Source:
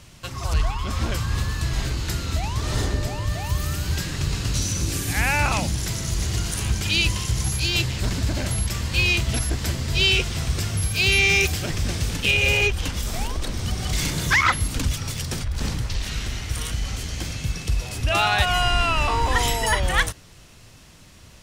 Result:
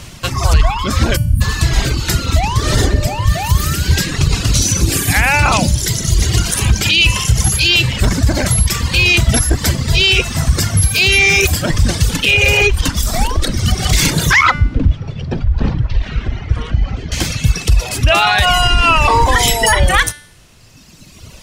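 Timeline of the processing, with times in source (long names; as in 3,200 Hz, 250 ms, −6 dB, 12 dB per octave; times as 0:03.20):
0:01.17–0:01.41: gain on a spectral selection 310–8,800 Hz −29 dB
0:06.92–0:08.07: parametric band 2,900 Hz +7 dB 0.43 octaves
0:14.51–0:17.12: head-to-tape spacing loss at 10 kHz 39 dB
whole clip: reverb reduction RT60 2 s; hum removal 293.8 Hz, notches 40; boost into a limiter +15.5 dB; level −1 dB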